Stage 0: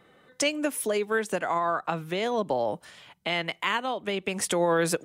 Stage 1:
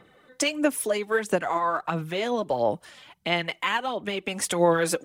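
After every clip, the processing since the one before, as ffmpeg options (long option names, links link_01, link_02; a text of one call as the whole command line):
ffmpeg -i in.wav -af "aphaser=in_gain=1:out_gain=1:delay=3.9:decay=0.48:speed=1.5:type=sinusoidal" out.wav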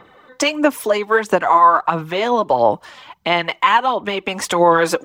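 ffmpeg -i in.wav -af "equalizer=frequency=160:width_type=o:width=0.67:gain=-4,equalizer=frequency=1000:width_type=o:width=0.67:gain=9,equalizer=frequency=10000:width_type=o:width=0.67:gain=-11,alimiter=level_in=8.5dB:limit=-1dB:release=50:level=0:latency=1,volume=-1dB" out.wav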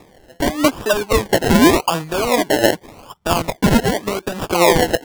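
ffmpeg -i in.wav -af "acrusher=samples=29:mix=1:aa=0.000001:lfo=1:lforange=17.4:lforate=0.86" out.wav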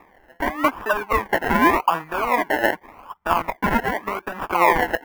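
ffmpeg -i in.wav -af "equalizer=frequency=125:width_type=o:width=1:gain=-10,equalizer=frequency=500:width_type=o:width=1:gain=-4,equalizer=frequency=1000:width_type=o:width=1:gain=9,equalizer=frequency=2000:width_type=o:width=1:gain=8,equalizer=frequency=4000:width_type=o:width=1:gain=-10,equalizer=frequency=8000:width_type=o:width=1:gain=-11,volume=-6.5dB" out.wav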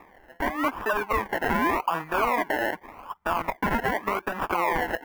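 ffmpeg -i in.wav -af "alimiter=limit=-13dB:level=0:latency=1:release=78" out.wav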